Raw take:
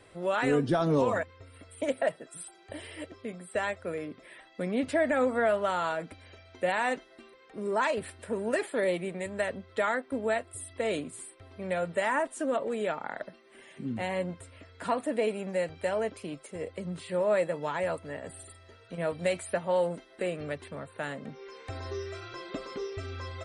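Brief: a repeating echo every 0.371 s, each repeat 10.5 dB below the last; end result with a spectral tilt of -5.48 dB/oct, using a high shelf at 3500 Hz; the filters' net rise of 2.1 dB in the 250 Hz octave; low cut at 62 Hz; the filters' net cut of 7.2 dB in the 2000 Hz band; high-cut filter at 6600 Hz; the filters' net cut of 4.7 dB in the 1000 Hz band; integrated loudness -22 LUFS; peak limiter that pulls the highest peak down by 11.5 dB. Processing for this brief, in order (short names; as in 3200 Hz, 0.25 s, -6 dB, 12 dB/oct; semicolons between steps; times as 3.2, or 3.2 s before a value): HPF 62 Hz; LPF 6600 Hz; bell 250 Hz +3 dB; bell 1000 Hz -5 dB; bell 2000 Hz -9 dB; high shelf 3500 Hz +6 dB; limiter -27 dBFS; feedback echo 0.371 s, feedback 30%, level -10.5 dB; gain +15.5 dB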